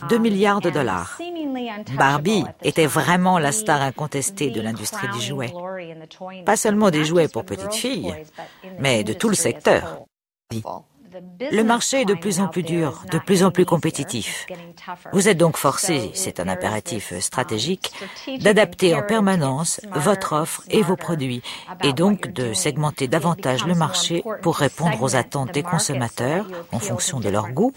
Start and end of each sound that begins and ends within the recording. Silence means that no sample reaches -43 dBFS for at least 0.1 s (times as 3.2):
10.5–10.81